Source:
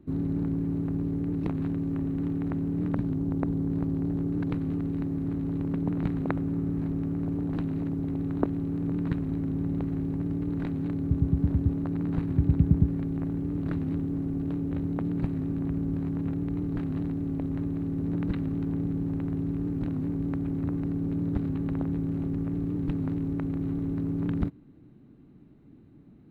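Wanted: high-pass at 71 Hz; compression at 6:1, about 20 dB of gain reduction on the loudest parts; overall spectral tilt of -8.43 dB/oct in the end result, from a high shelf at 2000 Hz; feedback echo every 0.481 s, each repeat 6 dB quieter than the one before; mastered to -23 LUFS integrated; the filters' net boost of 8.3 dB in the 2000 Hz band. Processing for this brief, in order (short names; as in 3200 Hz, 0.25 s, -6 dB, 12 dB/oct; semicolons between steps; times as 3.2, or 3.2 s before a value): HPF 71 Hz; high shelf 2000 Hz +7 dB; bell 2000 Hz +6.5 dB; compressor 6:1, threshold -40 dBFS; feedback echo 0.481 s, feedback 50%, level -6 dB; gain +18.5 dB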